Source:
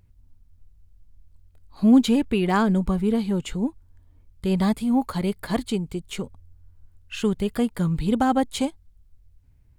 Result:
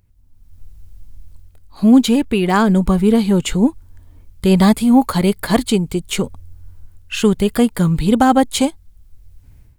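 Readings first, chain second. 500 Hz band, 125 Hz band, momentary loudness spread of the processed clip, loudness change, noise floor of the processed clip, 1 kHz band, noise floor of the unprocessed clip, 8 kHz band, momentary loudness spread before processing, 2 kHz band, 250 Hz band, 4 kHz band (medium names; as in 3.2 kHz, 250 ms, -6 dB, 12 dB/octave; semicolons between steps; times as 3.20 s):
+9.0 dB, +8.5 dB, 9 LU, +8.0 dB, -48 dBFS, +8.5 dB, -57 dBFS, +12.5 dB, 13 LU, +8.5 dB, +8.0 dB, +10.0 dB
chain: treble shelf 7 kHz +5.5 dB; level rider gain up to 16 dB; peaking EQ 62 Hz -2 dB 3 oct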